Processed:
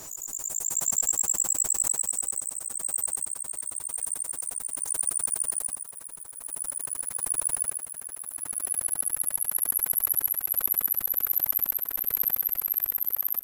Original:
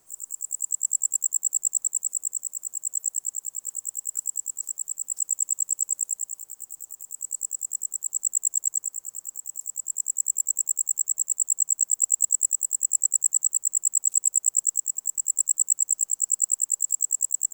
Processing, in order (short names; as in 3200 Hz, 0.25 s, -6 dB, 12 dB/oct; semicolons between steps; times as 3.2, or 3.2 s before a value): speed glide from 92% -> 169%; backwards sustainer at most 45 dB/s; gain -3 dB